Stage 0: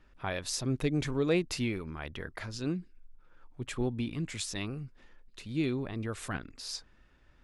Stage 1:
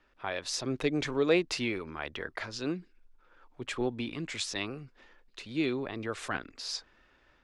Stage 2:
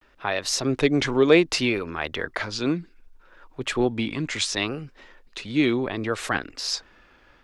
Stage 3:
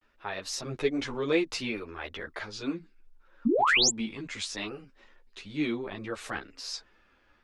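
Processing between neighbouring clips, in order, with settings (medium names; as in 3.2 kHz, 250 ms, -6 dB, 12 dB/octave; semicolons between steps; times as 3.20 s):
three-band isolator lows -12 dB, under 300 Hz, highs -14 dB, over 6.9 kHz; level rider gain up to 4.5 dB
vibrato 0.66 Hz 88 cents; trim +9 dB
painted sound rise, 3.45–3.90 s, 210–7900 Hz -13 dBFS; three-phase chorus; trim -6.5 dB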